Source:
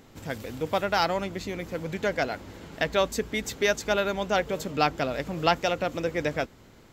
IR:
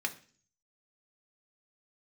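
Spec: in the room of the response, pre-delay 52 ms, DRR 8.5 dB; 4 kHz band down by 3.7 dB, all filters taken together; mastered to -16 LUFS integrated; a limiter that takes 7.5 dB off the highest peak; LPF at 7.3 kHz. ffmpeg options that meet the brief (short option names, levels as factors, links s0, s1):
-filter_complex "[0:a]lowpass=7300,equalizer=f=4000:t=o:g=-4.5,alimiter=limit=0.126:level=0:latency=1,asplit=2[s0][s1];[1:a]atrim=start_sample=2205,adelay=52[s2];[s1][s2]afir=irnorm=-1:irlink=0,volume=0.224[s3];[s0][s3]amix=inputs=2:normalize=0,volume=5.31"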